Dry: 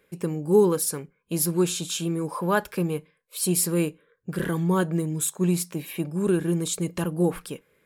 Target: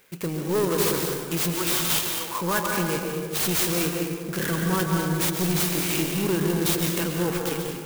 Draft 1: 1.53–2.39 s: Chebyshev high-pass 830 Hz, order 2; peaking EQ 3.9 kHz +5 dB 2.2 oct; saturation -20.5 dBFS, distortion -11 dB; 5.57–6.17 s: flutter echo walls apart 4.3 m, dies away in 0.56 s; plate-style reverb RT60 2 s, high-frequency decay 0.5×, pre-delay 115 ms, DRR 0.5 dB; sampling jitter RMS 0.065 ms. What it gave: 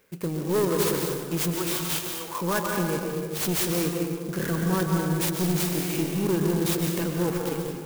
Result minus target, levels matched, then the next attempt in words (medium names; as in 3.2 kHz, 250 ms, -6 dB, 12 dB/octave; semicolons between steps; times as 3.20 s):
4 kHz band -2.5 dB
1.53–2.39 s: Chebyshev high-pass 830 Hz, order 2; peaking EQ 3.9 kHz +16.5 dB 2.2 oct; saturation -20.5 dBFS, distortion -8 dB; 5.57–6.17 s: flutter echo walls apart 4.3 m, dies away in 0.56 s; plate-style reverb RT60 2 s, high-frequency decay 0.5×, pre-delay 115 ms, DRR 0.5 dB; sampling jitter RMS 0.065 ms